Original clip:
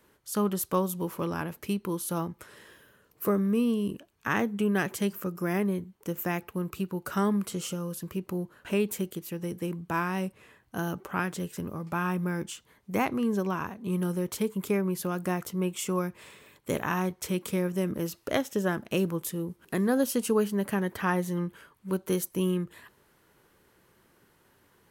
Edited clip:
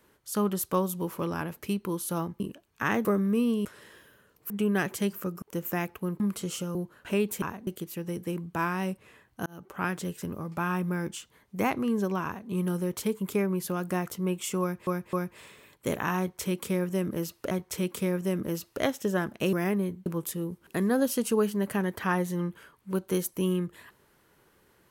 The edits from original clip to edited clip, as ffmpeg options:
-filter_complex "[0:a]asplit=16[a][b][c][d][e][f][g][h][i][j][k][l][m][n][o][p];[a]atrim=end=2.402[q];[b]atrim=start=3.848:end=4.502[r];[c]atrim=start=3.248:end=3.852[s];[d]atrim=start=2.398:end=3.252[t];[e]atrim=start=4.498:end=5.422[u];[f]atrim=start=5.948:end=6.732[v];[g]atrim=start=7.308:end=7.862[w];[h]atrim=start=8.348:end=9.022[x];[i]atrim=start=13.588:end=13.842[y];[j]atrim=start=9.018:end=10.81,asetpts=PTS-STARTPTS,afade=t=out:st=1.788:d=0.004:c=hsin[z];[k]atrim=start=10.81:end=16.222,asetpts=PTS-STARTPTS,afade=t=in:d=0.41[aa];[l]atrim=start=15.958:end=16.222[ab];[m]atrim=start=15.958:end=18.342[ac];[n]atrim=start=17.018:end=19.042[ad];[o]atrim=start=5.418:end=5.952[ae];[p]atrim=start=19.038[af];[q][r]acrossfade=d=0.004:c1=hsin:c2=hsin[ag];[ag][s]acrossfade=d=0.004:c1=hsin:c2=hsin[ah];[ah][t]acrossfade=d=0.004:c1=hsin:c2=hsin[ai];[ai][u]acrossfade=d=0.004:c1=hsin:c2=hsin[aj];[aj][v]acrossfade=d=0.004:c1=hsin:c2=hsin[ak];[ak][w]acrossfade=d=0.004:c1=hsin:c2=hsin[al];[al][x]acrossfade=d=0.004:c1=hsin:c2=hsin[am];[am][y]acrossfade=d=0.004:c1=hsin:c2=hsin[an];[z][aa]concat=n=2:v=0:a=1[ao];[an][ao]acrossfade=d=0.004:c1=hsin:c2=hsin[ap];[ap][ab]acrossfade=d=0.004:c1=hsin:c2=hsin[aq];[aq][ac]acrossfade=d=0.004:c1=hsin:c2=hsin[ar];[ar][ad]acrossfade=d=0.004:c1=hsin:c2=hsin[as];[as][ae]acrossfade=d=0.004:c1=hsin:c2=hsin[at];[at][af]acrossfade=d=0.004:c1=hsin:c2=hsin"

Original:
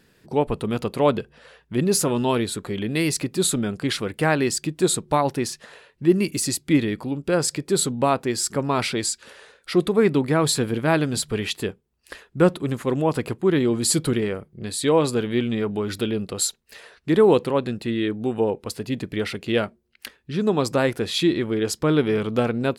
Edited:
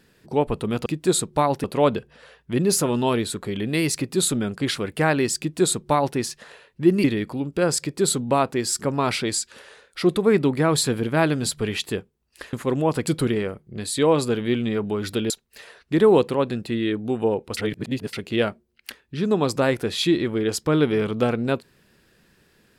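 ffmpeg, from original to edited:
-filter_complex "[0:a]asplit=9[a][b][c][d][e][f][g][h][i];[a]atrim=end=0.862[j];[b]atrim=start=4.608:end=5.392[k];[c]atrim=start=0.858:end=6.262[l];[d]atrim=start=6.748:end=12.242[m];[e]atrim=start=12.728:end=13.272[n];[f]atrim=start=13.928:end=16.162[o];[g]atrim=start=16.458:end=18.732[p];[h]atrim=start=18.728:end=19.292,asetpts=PTS-STARTPTS,areverse[q];[i]atrim=start=19.288[r];[j][k]acrossfade=d=0.004:c1=hsin:c2=hsin[s];[s][l]acrossfade=d=0.004:c1=hsin:c2=hsin[t];[t][m]acrossfade=d=0.004:c1=hsin:c2=hsin[u];[u][n]acrossfade=d=0.004:c1=hsin:c2=hsin[v];[v][o]acrossfade=d=0.004:c1=hsin:c2=hsin[w];[w][p]acrossfade=d=0.004:c1=hsin:c2=hsin[x];[x][q]acrossfade=d=0.004:c1=hsin:c2=hsin[y];[y][r]acrossfade=d=0.004:c1=hsin:c2=hsin"

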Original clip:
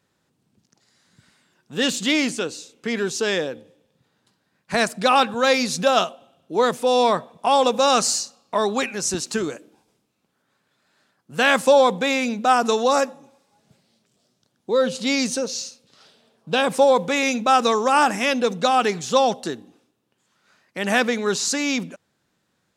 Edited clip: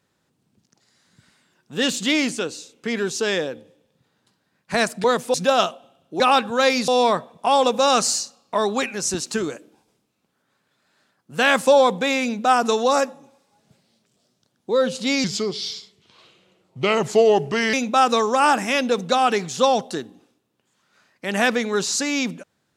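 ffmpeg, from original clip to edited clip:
-filter_complex "[0:a]asplit=7[a][b][c][d][e][f][g];[a]atrim=end=5.042[h];[b]atrim=start=6.578:end=6.882[i];[c]atrim=start=5.718:end=6.582[j];[d]atrim=start=5.038:end=5.722[k];[e]atrim=start=6.878:end=15.244[l];[f]atrim=start=15.24:end=17.26,asetpts=PTS-STARTPTS,asetrate=35721,aresample=44100[m];[g]atrim=start=17.256[n];[h][i]acrossfade=d=0.004:c1=hsin:c2=hsin[o];[o][j]acrossfade=d=0.004:c1=hsin:c2=hsin[p];[p][k]acrossfade=d=0.004:c1=hsin:c2=hsin[q];[q][l]acrossfade=d=0.004:c1=hsin:c2=hsin[r];[r][m]acrossfade=d=0.004:c1=hsin:c2=hsin[s];[s][n]acrossfade=d=0.004:c1=hsin:c2=hsin"

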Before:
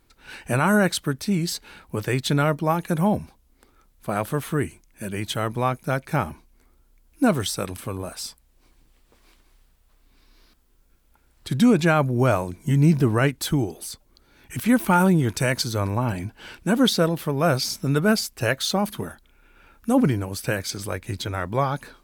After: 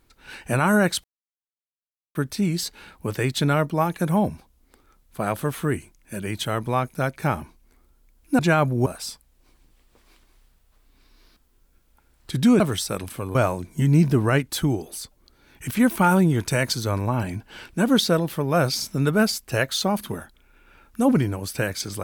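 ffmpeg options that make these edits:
-filter_complex "[0:a]asplit=6[a][b][c][d][e][f];[a]atrim=end=1.04,asetpts=PTS-STARTPTS,afade=t=out:st=1.036:d=0.004:c=hsin,apad=pad_dur=1.11[g];[b]atrim=start=1.04:end=7.282,asetpts=PTS-STARTPTS,afade=t=in:d=0.004:c=hsin[h];[c]atrim=start=11.768:end=12.242[i];[d]atrim=start=8.028:end=11.772[j];[e]atrim=start=7.278:end=8.032[k];[f]atrim=start=12.238[l];[g][h]concat=n=2:v=0:a=1[m];[m][i]acrossfade=d=0.004:c1=hsin:c2=hsin[n];[n][j]acrossfade=d=0.004:c1=hsin:c2=hsin[o];[o][k]acrossfade=d=0.004:c1=hsin:c2=hsin[p];[p][l]acrossfade=d=0.004:c1=hsin:c2=hsin"

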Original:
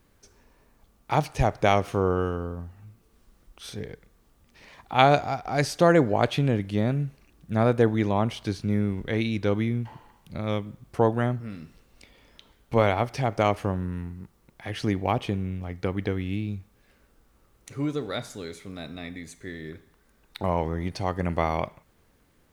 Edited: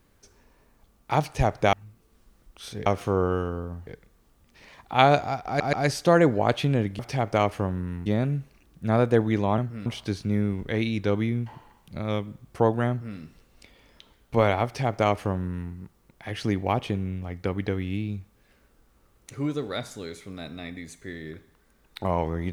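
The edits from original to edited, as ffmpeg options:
-filter_complex "[0:a]asplit=10[a][b][c][d][e][f][g][h][i][j];[a]atrim=end=1.732[k];[b]atrim=start=2.738:end=3.872[l];[c]atrim=start=1.728:end=2.742[m];[d]atrim=start=3.868:end=5.602[n];[e]atrim=start=5.468:end=5.602[o];[f]atrim=start=5.468:end=6.732[p];[g]atrim=start=13.038:end=14.112[q];[h]atrim=start=6.728:end=8.252[r];[i]atrim=start=11.278:end=11.562[s];[j]atrim=start=8.248[t];[k][l]acrossfade=d=0.004:c1=hsin:c2=hsin[u];[u][m]acrossfade=d=0.004:c1=hsin:c2=hsin[v];[v][n]acrossfade=d=0.004:c1=hsin:c2=hsin[w];[w][o]acrossfade=d=0.004:c1=hsin:c2=hsin[x];[x][p]acrossfade=d=0.004:c1=hsin:c2=hsin[y];[y][q]acrossfade=d=0.004:c1=hsin:c2=hsin[z];[z][r]acrossfade=d=0.004:c1=hsin:c2=hsin[aa];[aa][s]acrossfade=d=0.004:c1=hsin:c2=hsin[ab];[ab][t]acrossfade=d=0.004:c1=hsin:c2=hsin"

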